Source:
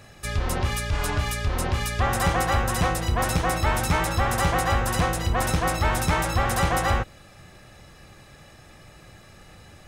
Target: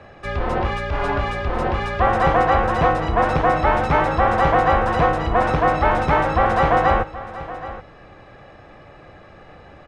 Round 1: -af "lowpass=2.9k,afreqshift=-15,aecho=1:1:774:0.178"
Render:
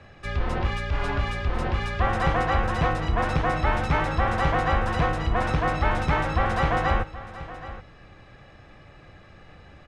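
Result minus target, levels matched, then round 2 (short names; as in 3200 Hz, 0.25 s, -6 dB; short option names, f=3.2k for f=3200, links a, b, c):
500 Hz band -3.0 dB
-af "lowpass=2.9k,equalizer=f=650:w=0.45:g=9.5,afreqshift=-15,aecho=1:1:774:0.178"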